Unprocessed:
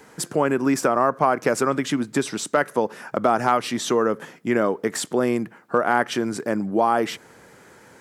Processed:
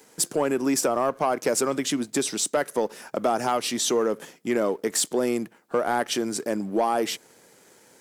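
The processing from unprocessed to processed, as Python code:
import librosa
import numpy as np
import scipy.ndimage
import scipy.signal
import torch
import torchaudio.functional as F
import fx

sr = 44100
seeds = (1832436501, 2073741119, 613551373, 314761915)

y = fx.highpass(x, sr, hz=650.0, slope=6)
y = fx.peak_eq(y, sr, hz=1400.0, db=-12.5, octaves=2.1)
y = fx.leveller(y, sr, passes=1)
y = F.gain(torch.from_numpy(y), 3.0).numpy()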